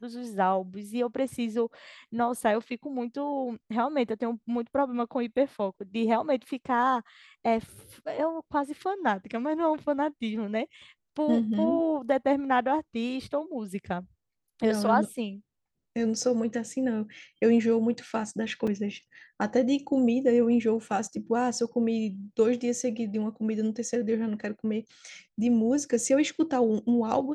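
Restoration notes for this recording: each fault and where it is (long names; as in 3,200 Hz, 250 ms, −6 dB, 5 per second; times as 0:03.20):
0:18.67: drop-out 4.6 ms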